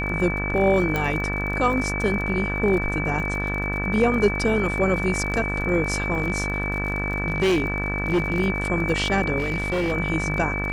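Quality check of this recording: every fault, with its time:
buzz 50 Hz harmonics 36 -28 dBFS
crackle 34 per s -30 dBFS
whine 2.3 kHz -27 dBFS
0.96 s: pop -11 dBFS
6.17–8.41 s: clipped -16.5 dBFS
9.38–9.93 s: clipped -20 dBFS

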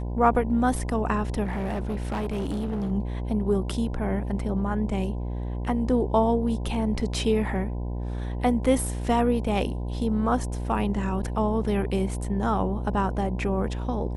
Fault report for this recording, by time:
buzz 60 Hz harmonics 17 -30 dBFS
1.43–2.92 s: clipped -25 dBFS

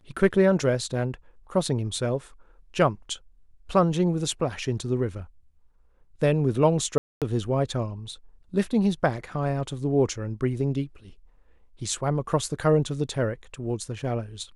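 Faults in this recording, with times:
6.98–7.22 s: dropout 237 ms

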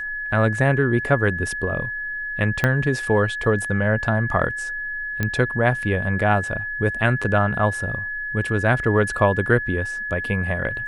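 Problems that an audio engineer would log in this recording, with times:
whine 1.7 kHz -26 dBFS
2.64 s: pop -7 dBFS
5.23 s: pop -9 dBFS

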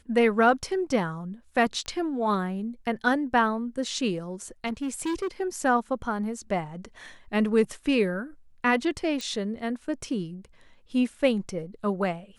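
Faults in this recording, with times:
1.86 s: pop -23 dBFS
4.66–5.28 s: clipped -25.5 dBFS
9.21 s: pop -20 dBFS

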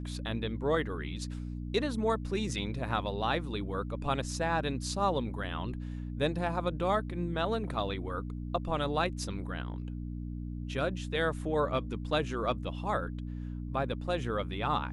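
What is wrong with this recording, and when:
hum 60 Hz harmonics 5 -38 dBFS

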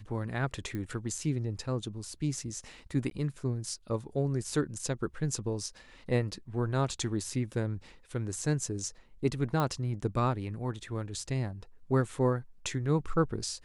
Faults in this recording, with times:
0.75 s: pop -25 dBFS
3.10–3.11 s: dropout 12 ms
9.60 s: pop -17 dBFS

